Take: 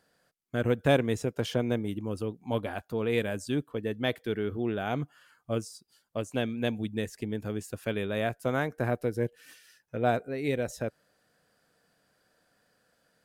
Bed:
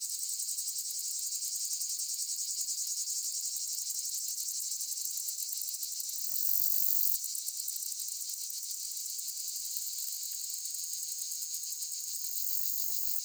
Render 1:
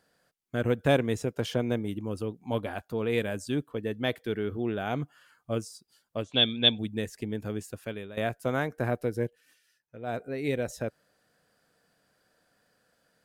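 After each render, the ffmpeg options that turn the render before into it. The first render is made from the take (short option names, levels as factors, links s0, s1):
-filter_complex "[0:a]asettb=1/sr,asplit=3[s0][s1][s2];[s0]atrim=end=6.234[s3];[s1]atrim=start=6.23:end=6.79,asetpts=PTS-STARTPTS,afade=t=in:d=0.004:c=qsin,afade=t=out:st=0.556:d=0.004:c=qsin,lowpass=f=3500:t=q:w=15[s4];[s2]atrim=start=6.786[s5];[s3][s4]acrossfade=d=0.004:c1=hsin:c2=qsin[s6];[s6][s5]acrossfade=d=0.004:c1=qsin:c2=hsin,asplit=4[s7][s8][s9][s10];[s7]atrim=end=8.17,asetpts=PTS-STARTPTS,afade=t=out:st=7.58:d=0.59:silence=0.199526[s11];[s8]atrim=start=8.17:end=9.41,asetpts=PTS-STARTPTS,afade=t=in:d=0.004:c=hsin:silence=0.199526,afade=t=out:st=1.04:d=0.2:silence=0.266073[s12];[s9]atrim=start=9.41:end=10.06,asetpts=PTS-STARTPTS,volume=0.266[s13];[s10]atrim=start=10.06,asetpts=PTS-STARTPTS,afade=t=in:d=0.2:silence=0.266073[s14];[s11][s12][s13][s14]concat=n=4:v=0:a=1"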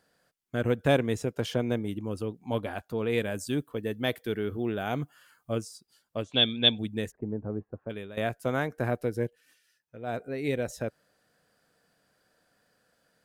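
-filter_complex "[0:a]asettb=1/sr,asplit=3[s0][s1][s2];[s0]atrim=end=3.354[s3];[s1]atrim=start=3.35:end=5.52,asetpts=PTS-STARTPTS,afade=t=in:d=0.004:c=qsin,afade=t=out:st=2.166:d=0.004:c=qsin,highshelf=f=9600:g=11[s4];[s2]atrim=start=5.516[s5];[s3][s4]acrossfade=d=0.004:c1=hsin:c2=qsin[s6];[s6][s5]acrossfade=d=0.004:c1=qsin:c2=hsin,asplit=3[s7][s8][s9];[s7]afade=t=out:st=7.1:d=0.02[s10];[s8]lowpass=f=1100:w=0.5412,lowpass=f=1100:w=1.3066,afade=t=in:st=7.1:d=0.02,afade=t=out:st=7.89:d=0.02[s11];[s9]afade=t=in:st=7.89:d=0.02[s12];[s10][s11][s12]amix=inputs=3:normalize=0"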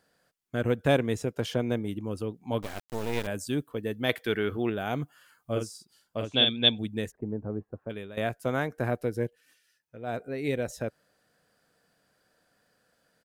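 -filter_complex "[0:a]asettb=1/sr,asplit=3[s0][s1][s2];[s0]atrim=end=2.624[s3];[s1]atrim=start=2.62:end=3.27,asetpts=PTS-STARTPTS,afade=t=in:d=0.004:c=qsin,afade=t=out:st=0.646:d=0.004:c=qsin,acrusher=bits=4:dc=4:mix=0:aa=0.000001[s4];[s2]atrim=start=3.266[s5];[s3][s4]acrossfade=d=0.004:c1=hsin:c2=qsin[s6];[s6][s5]acrossfade=d=0.004:c1=qsin:c2=hsin,asettb=1/sr,asplit=3[s7][s8][s9];[s7]atrim=end=4.094[s10];[s8]atrim=start=4.09:end=4.7,asetpts=PTS-STARTPTS,afade=t=in:d=0.004:c=qsin,afade=t=out:st=0.606:d=0.004:c=qsin,equalizer=f=1900:w=0.37:g=9[s11];[s9]atrim=start=4.696[s12];[s10][s11]acrossfade=d=0.004:c1=hsin:c2=qsin[s13];[s13][s12]acrossfade=d=0.004:c1=qsin:c2=hsin,asplit=3[s14][s15][s16];[s14]afade=t=out:st=5.54:d=0.02[s17];[s15]asplit=2[s18][s19];[s19]adelay=46,volume=0.596[s20];[s18][s20]amix=inputs=2:normalize=0,afade=t=in:st=5.54:d=0.02,afade=t=out:st=6.49:d=0.02[s21];[s16]afade=t=in:st=6.49:d=0.02[s22];[s17][s21][s22]amix=inputs=3:normalize=0"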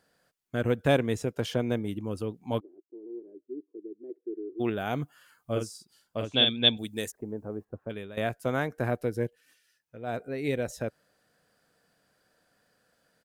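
-filter_complex "[0:a]asplit=3[s0][s1][s2];[s0]afade=t=out:st=2.59:d=0.02[s3];[s1]asuperpass=centerf=350:order=4:qfactor=4.8,afade=t=in:st=2.59:d=0.02,afade=t=out:st=4.59:d=0.02[s4];[s2]afade=t=in:st=4.59:d=0.02[s5];[s3][s4][s5]amix=inputs=3:normalize=0,asettb=1/sr,asplit=3[s6][s7][s8];[s6]atrim=end=6.774[s9];[s7]atrim=start=6.77:end=7.65,asetpts=PTS-STARTPTS,afade=t=in:d=0.004:c=qsin,afade=t=out:st=0.876:d=0.004:c=qsin,bass=f=250:g=-7,treble=f=4000:g=12[s10];[s8]atrim=start=7.646[s11];[s9][s10]acrossfade=d=0.004:c1=hsin:c2=qsin[s12];[s12][s11]acrossfade=d=0.004:c1=qsin:c2=hsin"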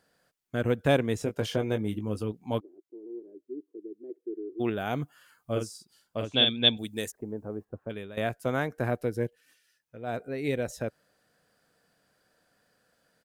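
-filter_complex "[0:a]asettb=1/sr,asplit=3[s0][s1][s2];[s0]atrim=end=1.184[s3];[s1]atrim=start=1.18:end=2.32,asetpts=PTS-STARTPTS,afade=t=in:d=0.004:c=qsin,afade=t=out:st=1.136:d=0.004:c=qsin,asplit=2[s4][s5];[s5]adelay=19,volume=0.422[s6];[s4][s6]amix=inputs=2:normalize=0,atrim=end_sample=50274[s7];[s2]atrim=start=2.316[s8];[s3][s7]acrossfade=d=0.004:c1=hsin:c2=qsin[s9];[s9][s8]acrossfade=d=0.004:c1=qsin:c2=hsin"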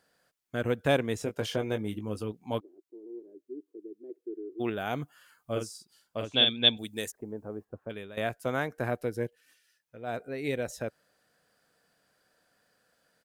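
-af "lowshelf=f=400:g=-4.5"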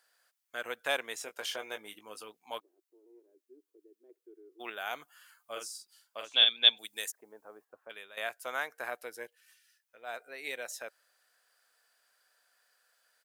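-af "highpass=930,highshelf=f=8500:g=4.5"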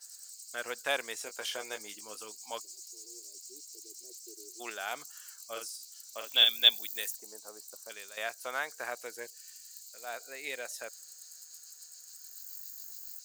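-filter_complex "[1:a]volume=0.224[s0];[0:a][s0]amix=inputs=2:normalize=0"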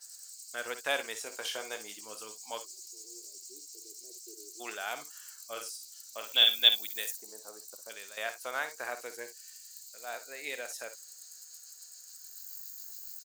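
-af "aecho=1:1:54|65:0.251|0.168"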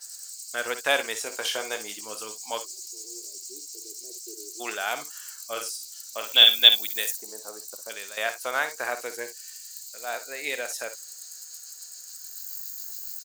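-af "volume=2.51,alimiter=limit=0.891:level=0:latency=1"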